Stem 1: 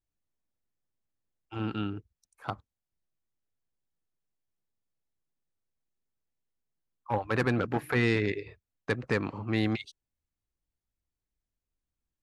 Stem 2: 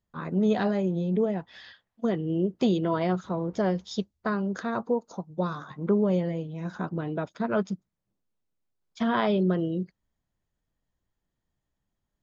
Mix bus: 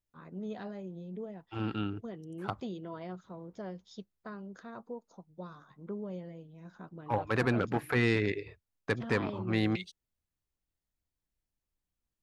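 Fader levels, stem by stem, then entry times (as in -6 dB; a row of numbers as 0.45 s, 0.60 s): -1.5 dB, -16.0 dB; 0.00 s, 0.00 s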